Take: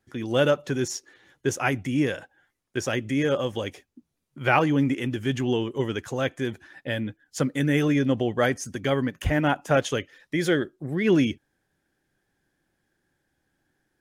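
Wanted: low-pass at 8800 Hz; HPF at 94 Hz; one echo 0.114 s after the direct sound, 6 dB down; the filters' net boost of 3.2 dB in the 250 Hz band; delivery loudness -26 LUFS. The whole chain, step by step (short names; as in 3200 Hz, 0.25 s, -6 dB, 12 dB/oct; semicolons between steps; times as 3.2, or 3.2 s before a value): HPF 94 Hz; LPF 8800 Hz; bell 250 Hz +4 dB; echo 0.114 s -6 dB; gain -3 dB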